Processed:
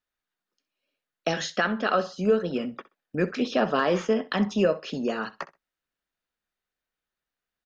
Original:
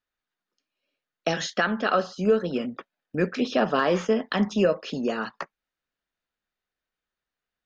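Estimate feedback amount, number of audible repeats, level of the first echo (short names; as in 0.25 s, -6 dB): 17%, 2, -18.0 dB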